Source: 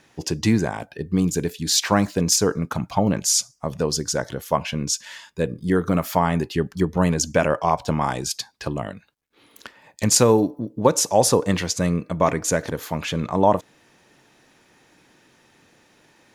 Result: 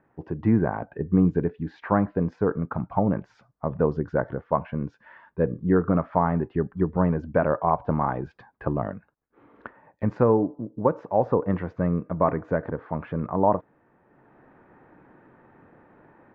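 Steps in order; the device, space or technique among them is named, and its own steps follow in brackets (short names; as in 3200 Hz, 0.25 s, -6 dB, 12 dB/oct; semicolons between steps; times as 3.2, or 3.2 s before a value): action camera in a waterproof case (LPF 1500 Hz 24 dB/oct; AGC gain up to 11 dB; gain -6 dB; AAC 96 kbps 32000 Hz)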